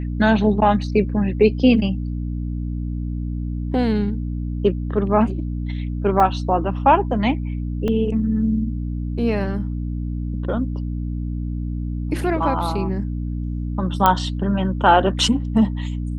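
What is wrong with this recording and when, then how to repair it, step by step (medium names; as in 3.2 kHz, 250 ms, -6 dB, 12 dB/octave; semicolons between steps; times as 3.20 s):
hum 60 Hz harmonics 5 -25 dBFS
6.20 s: dropout 3 ms
7.88 s: dropout 2.8 ms
14.06 s: pop -2 dBFS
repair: de-click; de-hum 60 Hz, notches 5; interpolate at 6.20 s, 3 ms; interpolate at 7.88 s, 2.8 ms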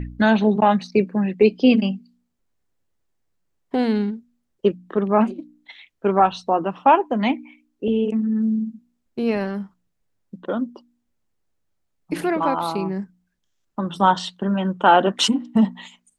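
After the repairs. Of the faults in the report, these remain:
nothing left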